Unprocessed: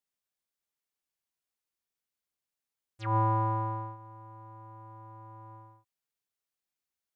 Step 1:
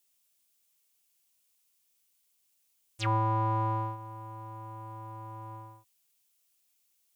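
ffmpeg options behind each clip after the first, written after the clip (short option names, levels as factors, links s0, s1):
-af "acompressor=threshold=0.0316:ratio=6,aexciter=amount=2.7:drive=4.9:freq=2400,volume=1.88"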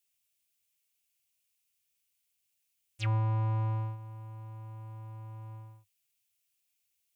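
-af "equalizer=f=100:t=o:w=0.67:g=11,equalizer=f=250:t=o:w=0.67:g=-7,equalizer=f=1000:t=o:w=0.67:g=-6,equalizer=f=2500:t=o:w=0.67:g=6,volume=0.473"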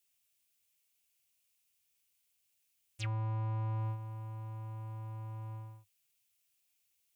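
-af "alimiter=level_in=2.66:limit=0.0631:level=0:latency=1,volume=0.376,volume=1.19"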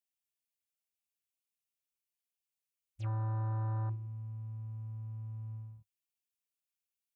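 -af "afwtdn=0.00708,volume=1.12"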